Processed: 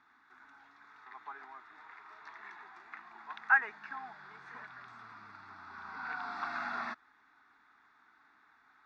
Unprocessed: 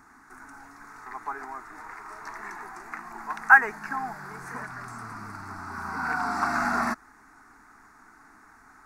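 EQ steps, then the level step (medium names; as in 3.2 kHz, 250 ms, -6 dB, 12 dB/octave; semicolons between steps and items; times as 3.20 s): high-pass 63 Hz; four-pole ladder low-pass 3.7 kHz, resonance 75%; bass shelf 470 Hz -10 dB; +1.0 dB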